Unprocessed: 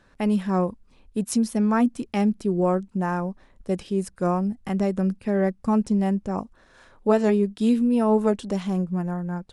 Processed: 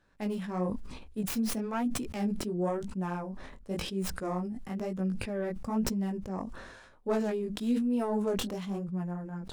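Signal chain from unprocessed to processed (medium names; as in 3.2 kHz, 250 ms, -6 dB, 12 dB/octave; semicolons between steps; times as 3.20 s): tracing distortion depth 0.42 ms; chorus 1 Hz, delay 16 ms, depth 7.2 ms; decay stretcher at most 43 dB/s; trim -7.5 dB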